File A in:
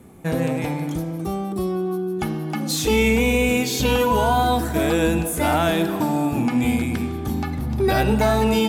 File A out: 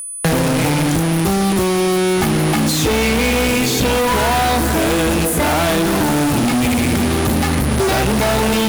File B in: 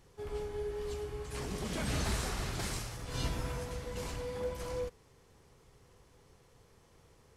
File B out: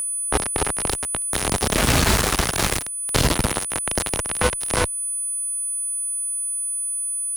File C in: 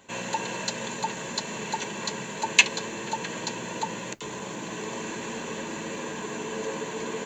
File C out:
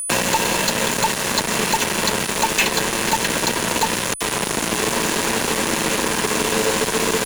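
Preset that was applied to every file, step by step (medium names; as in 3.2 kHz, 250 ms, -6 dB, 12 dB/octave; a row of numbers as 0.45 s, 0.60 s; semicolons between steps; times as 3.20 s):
fuzz box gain 41 dB, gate -32 dBFS; whistle 9.9 kHz -33 dBFS; three bands compressed up and down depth 70%; peak normalisation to -3 dBFS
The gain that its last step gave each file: -1.0 dB, +5.0 dB, +1.0 dB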